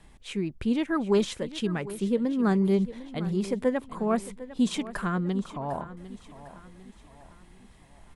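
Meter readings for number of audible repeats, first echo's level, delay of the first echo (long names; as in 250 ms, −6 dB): 3, −15.5 dB, 752 ms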